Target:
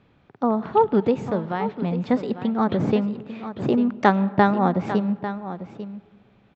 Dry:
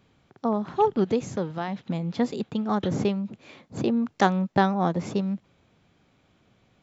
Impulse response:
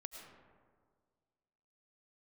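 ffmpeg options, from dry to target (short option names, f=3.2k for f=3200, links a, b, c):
-filter_complex "[0:a]lowpass=2.8k,aecho=1:1:882:0.251,asplit=2[a][b];[1:a]atrim=start_sample=2205[c];[b][c]afir=irnorm=-1:irlink=0,volume=-9.5dB[d];[a][d]amix=inputs=2:normalize=0,asetrate=45938,aresample=44100,volume=2.5dB"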